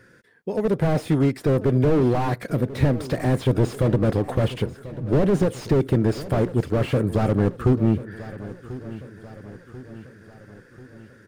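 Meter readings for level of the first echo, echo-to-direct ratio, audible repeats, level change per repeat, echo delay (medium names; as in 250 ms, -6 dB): -16.0 dB, -14.5 dB, 4, -5.5 dB, 1040 ms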